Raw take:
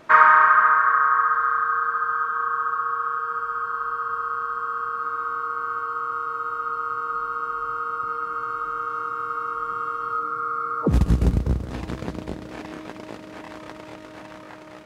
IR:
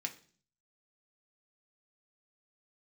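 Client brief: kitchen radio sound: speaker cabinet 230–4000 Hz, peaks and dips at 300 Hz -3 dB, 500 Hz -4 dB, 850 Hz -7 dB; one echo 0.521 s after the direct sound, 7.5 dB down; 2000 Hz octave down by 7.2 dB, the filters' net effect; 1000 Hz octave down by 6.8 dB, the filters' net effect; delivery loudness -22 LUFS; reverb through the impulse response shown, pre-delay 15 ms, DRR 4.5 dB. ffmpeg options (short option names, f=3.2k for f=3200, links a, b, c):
-filter_complex "[0:a]equalizer=f=1k:t=o:g=-4,equalizer=f=2k:t=o:g=-8,aecho=1:1:521:0.422,asplit=2[a][b];[1:a]atrim=start_sample=2205,adelay=15[c];[b][c]afir=irnorm=-1:irlink=0,volume=-4.5dB[d];[a][d]amix=inputs=2:normalize=0,highpass=230,equalizer=f=300:t=q:w=4:g=-3,equalizer=f=500:t=q:w=4:g=-4,equalizer=f=850:t=q:w=4:g=-7,lowpass=f=4k:w=0.5412,lowpass=f=4k:w=1.3066,volume=7.5dB"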